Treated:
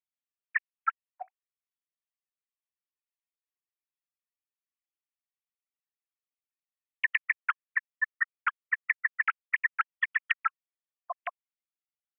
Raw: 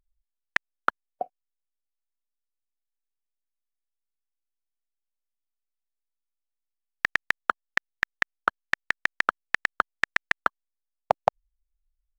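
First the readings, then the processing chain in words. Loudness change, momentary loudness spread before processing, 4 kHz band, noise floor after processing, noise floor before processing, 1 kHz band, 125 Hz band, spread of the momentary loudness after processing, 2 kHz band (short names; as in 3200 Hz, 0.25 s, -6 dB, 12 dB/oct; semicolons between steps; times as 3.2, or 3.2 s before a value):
-2.5 dB, 5 LU, -10.0 dB, under -85 dBFS, -84 dBFS, -6.0 dB, under -40 dB, 13 LU, -2.0 dB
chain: sine-wave speech; HPF 1200 Hz 24 dB/oct; bell 2200 Hz +4 dB 0.41 oct; compressor, threshold -22 dBFS, peak gain reduction 6 dB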